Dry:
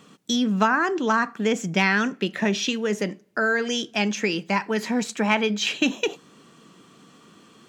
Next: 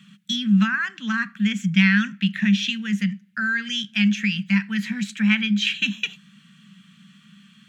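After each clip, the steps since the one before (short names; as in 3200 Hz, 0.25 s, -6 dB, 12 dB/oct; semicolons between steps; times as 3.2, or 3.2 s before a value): EQ curve 110 Hz 0 dB, 200 Hz +15 dB, 330 Hz -27 dB, 510 Hz -23 dB, 860 Hz -17 dB, 1600 Hz +7 dB, 3300 Hz +9 dB, 5000 Hz -1 dB, 11000 Hz +1 dB; gain -5.5 dB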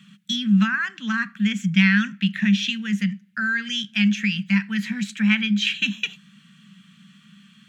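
nothing audible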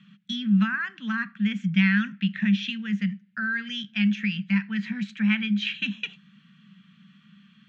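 air absorption 190 m; gain -3 dB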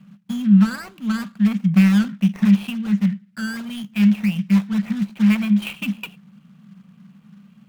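median filter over 25 samples; gain +8 dB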